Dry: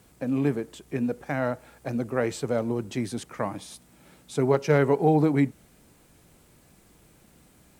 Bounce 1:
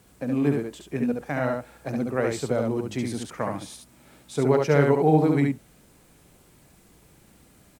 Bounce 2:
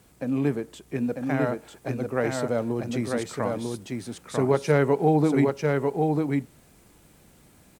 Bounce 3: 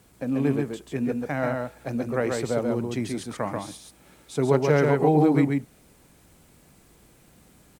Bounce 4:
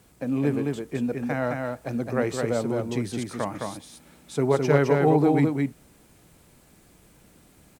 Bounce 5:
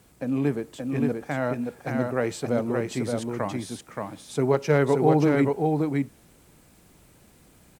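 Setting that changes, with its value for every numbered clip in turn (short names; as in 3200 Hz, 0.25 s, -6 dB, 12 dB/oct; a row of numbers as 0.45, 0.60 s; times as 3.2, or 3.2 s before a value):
echo, time: 70, 946, 136, 213, 575 ms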